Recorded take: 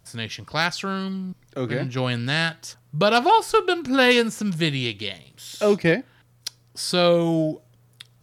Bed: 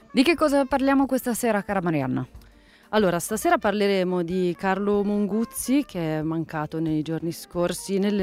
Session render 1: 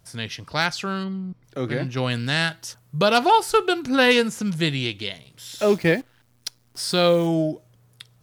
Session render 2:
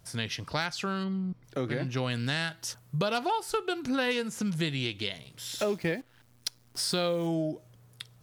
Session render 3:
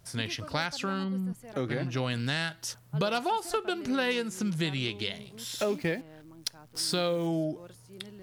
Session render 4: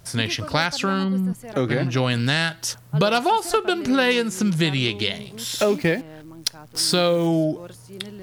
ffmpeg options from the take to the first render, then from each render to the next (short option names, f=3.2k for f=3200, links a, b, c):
-filter_complex "[0:a]asplit=3[a][b][c];[a]afade=t=out:st=1.03:d=0.02[d];[b]lowpass=f=1.3k:p=1,afade=t=in:st=1.03:d=0.02,afade=t=out:st=1.43:d=0.02[e];[c]afade=t=in:st=1.43:d=0.02[f];[d][e][f]amix=inputs=3:normalize=0,asettb=1/sr,asplit=3[g][h][i];[g]atrim=end=2.104[j];[h]atrim=start=2.1:end=3.88,asetpts=PTS-STARTPTS,afade=t=in:d=0.004:c=qsin,afade=t=out:st=1.776:d=0.004:c=qsin,highshelf=f=7.9k:g=5.5[k];[i]atrim=start=3.876[l];[j][k]acrossfade=d=0.004:c1=hsin:c2=qsin[m];[m][l]acrossfade=d=0.004:c1=qsin:c2=hsin,asettb=1/sr,asplit=3[n][o][p];[n]atrim=end=5.584[q];[o]atrim=start=5.58:end=7.27,asetpts=PTS-STARTPTS,afade=t=in:d=0.004:c=qsin,afade=t=out:st=1.686:d=0.004:c=qsin,acrusher=bits=8:dc=4:mix=0:aa=0.000001[r];[p]atrim=start=7.266[s];[q][r]acrossfade=d=0.004:c1=hsin:c2=qsin[t];[t][s]acrossfade=d=0.004:c1=qsin:c2=hsin"
-af "acompressor=threshold=-28dB:ratio=4"
-filter_complex "[1:a]volume=-25dB[a];[0:a][a]amix=inputs=2:normalize=0"
-af "volume=9.5dB"